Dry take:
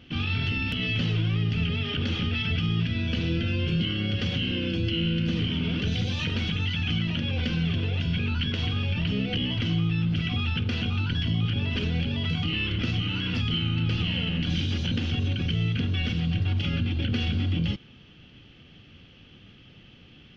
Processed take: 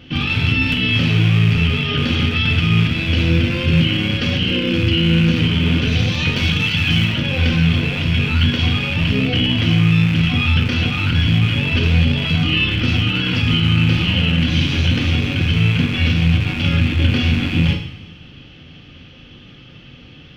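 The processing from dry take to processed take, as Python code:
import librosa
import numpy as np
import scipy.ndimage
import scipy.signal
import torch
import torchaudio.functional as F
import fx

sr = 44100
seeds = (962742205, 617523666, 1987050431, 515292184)

y = fx.rattle_buzz(x, sr, strikes_db=-27.0, level_db=-24.0)
y = fx.high_shelf(y, sr, hz=5200.0, db=7.5, at=(6.36, 7.05))
y = fx.rev_double_slope(y, sr, seeds[0], early_s=0.68, late_s=2.2, knee_db=-17, drr_db=2.0)
y = y * librosa.db_to_amplitude(8.0)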